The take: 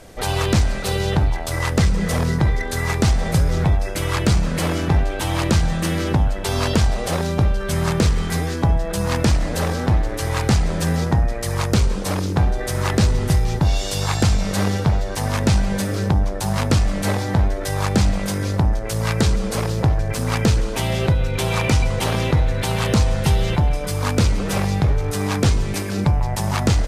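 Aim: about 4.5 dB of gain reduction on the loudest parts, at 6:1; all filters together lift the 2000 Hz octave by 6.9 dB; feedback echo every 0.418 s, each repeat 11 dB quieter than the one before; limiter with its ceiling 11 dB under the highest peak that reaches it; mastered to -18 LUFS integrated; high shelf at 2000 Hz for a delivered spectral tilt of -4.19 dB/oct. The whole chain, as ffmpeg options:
-af "highshelf=f=2k:g=6.5,equalizer=f=2k:t=o:g=4.5,acompressor=threshold=-16dB:ratio=6,alimiter=limit=-14dB:level=0:latency=1,aecho=1:1:418|836|1254:0.282|0.0789|0.0221,volume=5.5dB"

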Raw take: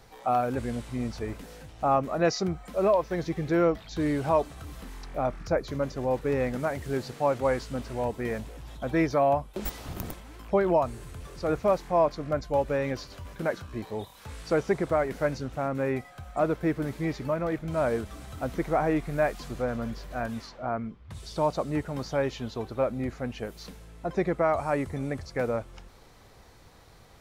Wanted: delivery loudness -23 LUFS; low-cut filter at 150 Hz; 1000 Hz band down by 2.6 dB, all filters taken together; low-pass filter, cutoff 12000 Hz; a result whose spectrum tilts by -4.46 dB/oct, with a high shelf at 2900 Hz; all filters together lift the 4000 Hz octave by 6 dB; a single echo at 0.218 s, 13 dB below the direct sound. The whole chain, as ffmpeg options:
-af "highpass=150,lowpass=12k,equalizer=f=1k:t=o:g=-4.5,highshelf=f=2.9k:g=5,equalizer=f=4k:t=o:g=3.5,aecho=1:1:218:0.224,volume=7dB"

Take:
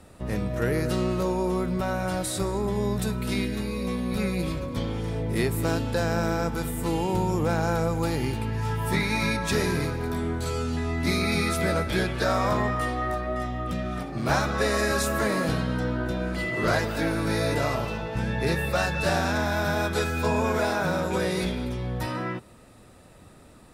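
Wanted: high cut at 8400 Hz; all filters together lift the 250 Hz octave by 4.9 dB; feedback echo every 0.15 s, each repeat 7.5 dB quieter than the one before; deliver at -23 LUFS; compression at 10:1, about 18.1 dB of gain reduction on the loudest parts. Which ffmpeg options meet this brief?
-af "lowpass=8.4k,equalizer=f=250:t=o:g=6.5,acompressor=threshold=-37dB:ratio=10,aecho=1:1:150|300|450|600|750:0.422|0.177|0.0744|0.0312|0.0131,volume=16.5dB"

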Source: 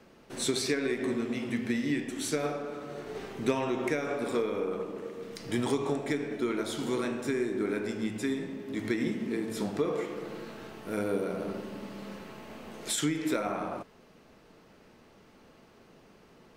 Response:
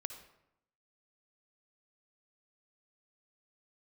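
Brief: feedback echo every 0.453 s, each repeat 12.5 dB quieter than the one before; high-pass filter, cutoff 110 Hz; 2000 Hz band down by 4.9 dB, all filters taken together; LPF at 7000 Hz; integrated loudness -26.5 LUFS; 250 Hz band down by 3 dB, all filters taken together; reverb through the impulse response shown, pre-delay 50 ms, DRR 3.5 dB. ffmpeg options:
-filter_complex "[0:a]highpass=110,lowpass=7k,equalizer=f=250:t=o:g=-3.5,equalizer=f=2k:t=o:g=-6,aecho=1:1:453|906|1359:0.237|0.0569|0.0137,asplit=2[a][b];[1:a]atrim=start_sample=2205,adelay=50[c];[b][c]afir=irnorm=-1:irlink=0,volume=-1.5dB[d];[a][d]amix=inputs=2:normalize=0,volume=6.5dB"

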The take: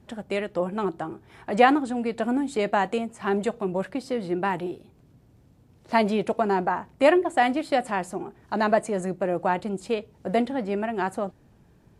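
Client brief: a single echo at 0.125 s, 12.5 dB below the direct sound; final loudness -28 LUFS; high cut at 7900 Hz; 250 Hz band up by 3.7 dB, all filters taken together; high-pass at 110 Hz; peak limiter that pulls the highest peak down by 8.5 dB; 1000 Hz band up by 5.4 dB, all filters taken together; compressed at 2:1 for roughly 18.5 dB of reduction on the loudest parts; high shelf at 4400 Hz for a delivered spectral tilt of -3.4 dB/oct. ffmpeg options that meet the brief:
-af "highpass=110,lowpass=7.9k,equalizer=f=250:t=o:g=4.5,equalizer=f=1k:t=o:g=7.5,highshelf=f=4.4k:g=-8,acompressor=threshold=-45dB:ratio=2,alimiter=level_in=4dB:limit=-24dB:level=0:latency=1,volume=-4dB,aecho=1:1:125:0.237,volume=11dB"

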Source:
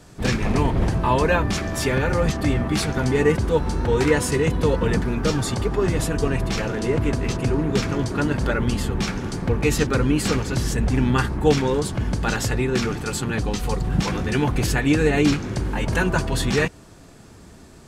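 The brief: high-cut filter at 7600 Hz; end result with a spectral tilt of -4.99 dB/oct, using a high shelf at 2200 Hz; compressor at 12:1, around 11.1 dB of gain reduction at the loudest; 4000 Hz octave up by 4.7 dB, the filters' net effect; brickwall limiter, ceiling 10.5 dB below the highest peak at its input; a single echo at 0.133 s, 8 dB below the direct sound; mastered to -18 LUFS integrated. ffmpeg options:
-af "lowpass=7.6k,highshelf=f=2.2k:g=3.5,equalizer=f=4k:t=o:g=3,acompressor=threshold=-24dB:ratio=12,alimiter=level_in=1dB:limit=-24dB:level=0:latency=1,volume=-1dB,aecho=1:1:133:0.398,volume=15dB"

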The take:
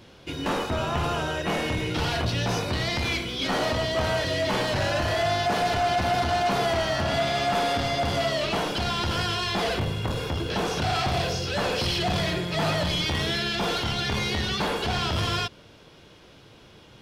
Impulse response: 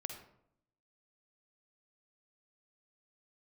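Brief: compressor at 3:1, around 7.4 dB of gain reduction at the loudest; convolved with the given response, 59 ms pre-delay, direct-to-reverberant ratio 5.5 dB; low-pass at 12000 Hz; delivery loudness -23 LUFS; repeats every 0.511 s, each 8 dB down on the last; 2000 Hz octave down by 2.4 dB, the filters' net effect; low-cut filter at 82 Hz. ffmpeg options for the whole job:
-filter_complex "[0:a]highpass=82,lowpass=12k,equalizer=f=2k:t=o:g=-3,acompressor=threshold=-32dB:ratio=3,aecho=1:1:511|1022|1533|2044|2555:0.398|0.159|0.0637|0.0255|0.0102,asplit=2[a][b];[1:a]atrim=start_sample=2205,adelay=59[c];[b][c]afir=irnorm=-1:irlink=0,volume=-4dB[d];[a][d]amix=inputs=2:normalize=0,volume=8dB"

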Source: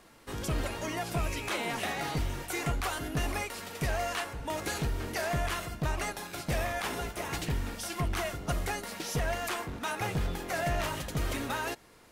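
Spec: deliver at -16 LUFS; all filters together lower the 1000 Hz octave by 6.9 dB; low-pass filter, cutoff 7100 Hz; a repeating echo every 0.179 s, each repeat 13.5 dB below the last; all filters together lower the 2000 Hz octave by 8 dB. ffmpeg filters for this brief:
-af "lowpass=7.1k,equalizer=f=1k:t=o:g=-8.5,equalizer=f=2k:t=o:g=-7.5,aecho=1:1:179|358:0.211|0.0444,volume=20.5dB"

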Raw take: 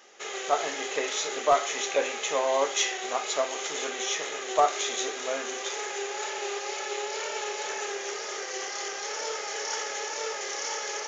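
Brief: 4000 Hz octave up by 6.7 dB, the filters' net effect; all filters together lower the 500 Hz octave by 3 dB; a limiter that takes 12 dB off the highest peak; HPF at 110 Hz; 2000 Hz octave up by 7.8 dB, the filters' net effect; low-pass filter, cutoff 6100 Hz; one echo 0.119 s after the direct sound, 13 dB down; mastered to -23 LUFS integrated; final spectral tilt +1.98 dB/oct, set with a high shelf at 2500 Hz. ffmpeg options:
-af "highpass=110,lowpass=6.1k,equalizer=f=500:t=o:g=-4.5,equalizer=f=2k:t=o:g=8.5,highshelf=f=2.5k:g=-3,equalizer=f=4k:t=o:g=9,alimiter=limit=-19.5dB:level=0:latency=1,aecho=1:1:119:0.224,volume=5dB"

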